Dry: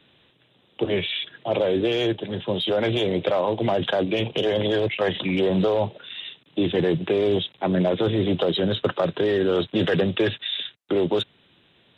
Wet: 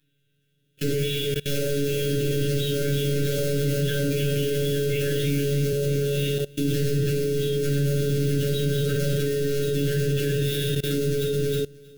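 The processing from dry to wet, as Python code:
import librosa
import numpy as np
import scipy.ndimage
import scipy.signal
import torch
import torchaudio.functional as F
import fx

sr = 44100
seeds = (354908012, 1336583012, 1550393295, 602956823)

y = fx.block_float(x, sr, bits=3)
y = fx.high_shelf(y, sr, hz=4400.0, db=11.0)
y = fx.echo_feedback(y, sr, ms=316, feedback_pct=54, wet_db=-8)
y = fx.robotise(y, sr, hz=142.0)
y = fx.brickwall_bandstop(y, sr, low_hz=560.0, high_hz=1300.0)
y = fx.room_shoebox(y, sr, seeds[0], volume_m3=860.0, walls='furnished', distance_m=8.5)
y = fx.level_steps(y, sr, step_db=23)
y = fx.low_shelf(y, sr, hz=440.0, db=10.0)
y = fx.band_squash(y, sr, depth_pct=40, at=(3.38, 5.73))
y = F.gain(torch.from_numpy(y), -6.5).numpy()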